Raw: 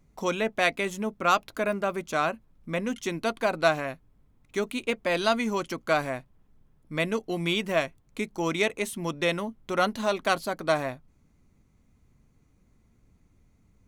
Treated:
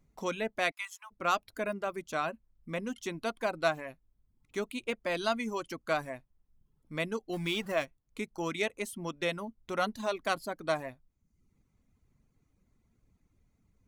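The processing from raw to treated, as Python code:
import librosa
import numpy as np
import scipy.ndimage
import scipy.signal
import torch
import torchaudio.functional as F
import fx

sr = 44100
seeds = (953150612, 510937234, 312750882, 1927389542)

y = fx.zero_step(x, sr, step_db=-35.0, at=(7.33, 7.85))
y = fx.dereverb_blind(y, sr, rt60_s=0.71)
y = fx.steep_highpass(y, sr, hz=920.0, slope=48, at=(0.7, 1.1), fade=0.02)
y = y * 10.0 ** (-6.0 / 20.0)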